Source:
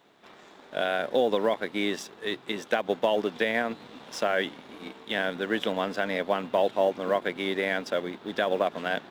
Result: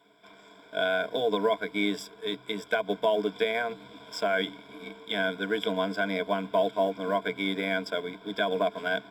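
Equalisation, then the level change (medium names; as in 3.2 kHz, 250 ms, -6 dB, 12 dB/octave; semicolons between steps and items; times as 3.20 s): rippled EQ curve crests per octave 1.7, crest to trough 17 dB; -5.0 dB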